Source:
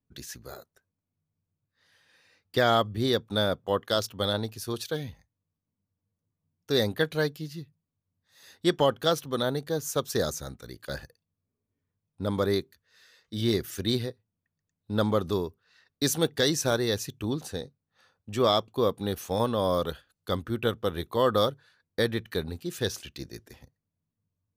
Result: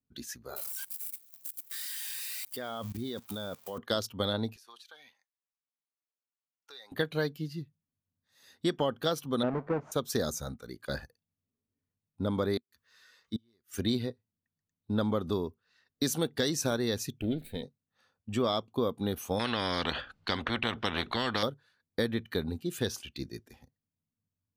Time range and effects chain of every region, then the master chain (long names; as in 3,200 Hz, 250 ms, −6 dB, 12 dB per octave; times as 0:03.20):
0:00.56–0:03.78: spike at every zero crossing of −24.5 dBFS + output level in coarse steps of 19 dB
0:04.56–0:06.92: high-pass filter 980 Hz + downward compressor 4 to 1, threshold −46 dBFS + high-shelf EQ 10,000 Hz −11 dB
0:09.43–0:09.92: each half-wave held at its own peak + low-pass filter 1,100 Hz + low-shelf EQ 150 Hz −11 dB
0:12.57–0:13.74: parametric band 1,100 Hz +6.5 dB 0.71 octaves + gate with flip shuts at −23 dBFS, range −41 dB + one half of a high-frequency compander encoder only
0:17.21–0:17.63: lower of the sound and its delayed copy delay 0.5 ms + phaser with its sweep stopped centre 2,600 Hz, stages 4
0:19.39–0:21.43: low-pass filter 3,300 Hz + every bin compressed towards the loudest bin 4 to 1
whole clip: noise reduction from a noise print of the clip's start 7 dB; parametric band 240 Hz +6.5 dB 0.37 octaves; downward compressor 3 to 1, threshold −27 dBFS